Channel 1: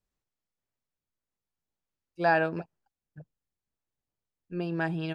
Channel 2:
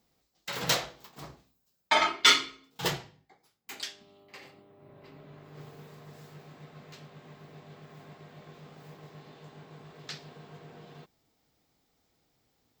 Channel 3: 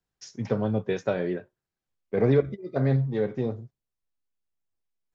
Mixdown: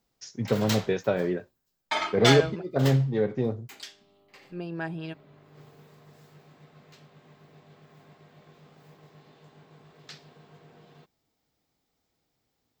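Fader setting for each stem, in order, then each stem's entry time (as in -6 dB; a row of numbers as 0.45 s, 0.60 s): -3.5 dB, -4.5 dB, +1.0 dB; 0.00 s, 0.00 s, 0.00 s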